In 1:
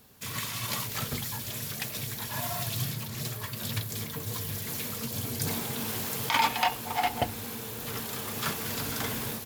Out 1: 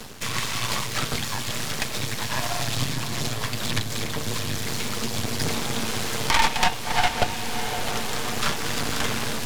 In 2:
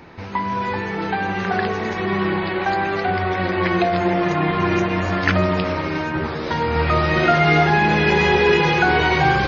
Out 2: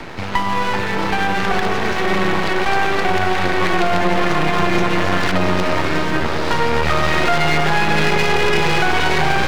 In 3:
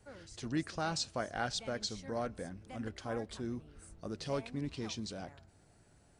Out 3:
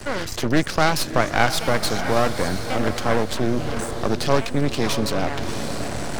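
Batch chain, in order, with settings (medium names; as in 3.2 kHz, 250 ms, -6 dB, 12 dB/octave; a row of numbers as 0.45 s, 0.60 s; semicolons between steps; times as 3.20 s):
self-modulated delay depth 0.1 ms; low-pass 7.9 kHz 12 dB/octave; bass shelf 350 Hz -3.5 dB; reverse; upward compressor, threshold -39 dBFS; reverse; peak limiter -12 dBFS; half-wave rectifier; on a send: echo that smears into a reverb 659 ms, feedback 41%, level -11 dB; on the sum: three bands compressed up and down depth 40%; peak normalisation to -2 dBFS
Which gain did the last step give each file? +13.5 dB, +8.0 dB, +22.0 dB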